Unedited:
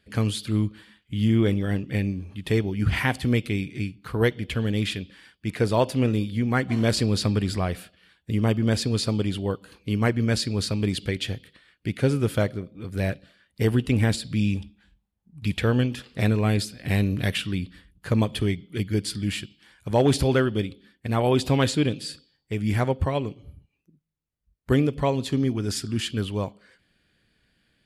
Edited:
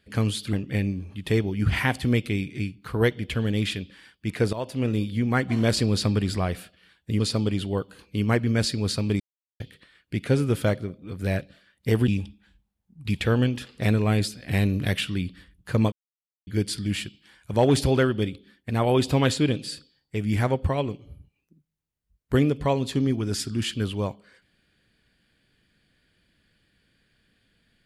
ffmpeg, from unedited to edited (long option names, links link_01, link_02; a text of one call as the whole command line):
ffmpeg -i in.wav -filter_complex "[0:a]asplit=9[link_01][link_02][link_03][link_04][link_05][link_06][link_07][link_08][link_09];[link_01]atrim=end=0.532[link_10];[link_02]atrim=start=1.728:end=5.73,asetpts=PTS-STARTPTS,afade=type=out:start_time=3.998:duration=0.004:curve=hsin:silence=0.188365[link_11];[link_03]atrim=start=5.73:end=8.402,asetpts=PTS-STARTPTS,afade=type=in:duration=0.5:silence=0.188365[link_12];[link_04]atrim=start=8.928:end=10.93,asetpts=PTS-STARTPTS,afade=type=out:start_time=1.998:duration=0.004:curve=hsin[link_13];[link_05]atrim=start=10.93:end=11.33,asetpts=PTS-STARTPTS,volume=0[link_14];[link_06]atrim=start=11.33:end=13.812,asetpts=PTS-STARTPTS,afade=type=in:duration=0.004:curve=hsin[link_15];[link_07]atrim=start=14.448:end=18.29,asetpts=PTS-STARTPTS,afade=type=out:start_time=3.838:duration=0.004:curve=hsin[link_16];[link_08]atrim=start=18.29:end=18.84,asetpts=PTS-STARTPTS,volume=0[link_17];[link_09]atrim=start=18.84,asetpts=PTS-STARTPTS,afade=type=in:duration=0.004:curve=hsin[link_18];[link_11][link_12]concat=n=2:v=0:a=1[link_19];[link_10][link_19]acrossfade=duration=0.004:curve1=hsin:curve2=hsin[link_20];[link_13][link_14][link_15]concat=n=3:v=0:a=1[link_21];[link_20][link_21]acrossfade=duration=0.004:curve1=hsin:curve2=hsin[link_22];[link_16][link_17][link_18]concat=n=3:v=0:a=1[link_23];[link_22][link_23]acrossfade=duration=0.004:curve1=hsin:curve2=hsin" out.wav